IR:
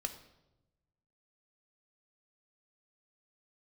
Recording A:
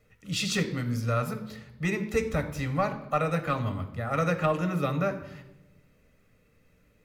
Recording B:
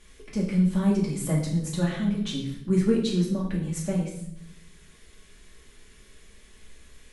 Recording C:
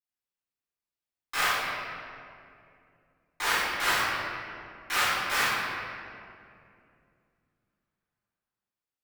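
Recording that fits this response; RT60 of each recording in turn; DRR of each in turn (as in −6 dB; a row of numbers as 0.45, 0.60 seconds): A; 0.95, 0.65, 2.5 seconds; 6.5, −4.5, −16.0 decibels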